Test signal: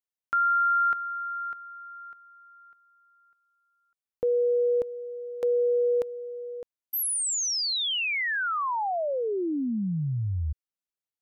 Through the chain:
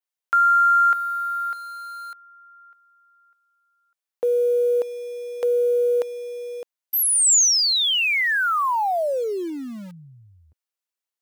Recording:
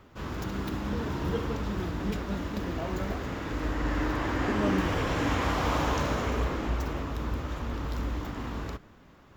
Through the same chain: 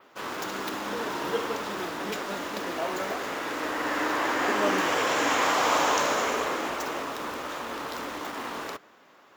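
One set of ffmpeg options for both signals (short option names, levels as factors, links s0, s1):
-filter_complex "[0:a]highpass=470,adynamicequalizer=threshold=0.00224:dfrequency=7100:dqfactor=1.8:tfrequency=7100:tqfactor=1.8:attack=5:release=100:ratio=0.375:range=3:mode=boostabove:tftype=bell,asplit=2[s0][s1];[s1]acrusher=bits=6:mix=0:aa=0.000001,volume=0.398[s2];[s0][s2]amix=inputs=2:normalize=0,volume=1.58"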